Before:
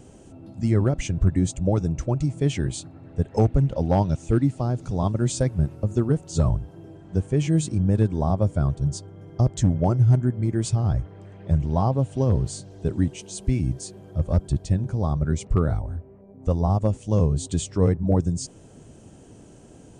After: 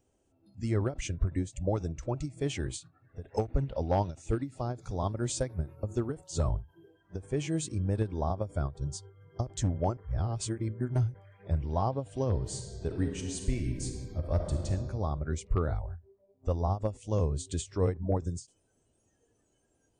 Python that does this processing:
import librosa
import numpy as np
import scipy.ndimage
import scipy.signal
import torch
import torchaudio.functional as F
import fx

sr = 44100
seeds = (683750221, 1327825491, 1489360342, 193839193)

y = fx.reverb_throw(x, sr, start_s=12.36, length_s=2.31, rt60_s=2.1, drr_db=2.5)
y = fx.edit(y, sr, fx.reverse_span(start_s=9.97, length_s=1.17), tone=tone)
y = fx.noise_reduce_blind(y, sr, reduce_db=18)
y = fx.peak_eq(y, sr, hz=170.0, db=-9.0, octaves=1.3)
y = fx.end_taper(y, sr, db_per_s=250.0)
y = F.gain(torch.from_numpy(y), -4.5).numpy()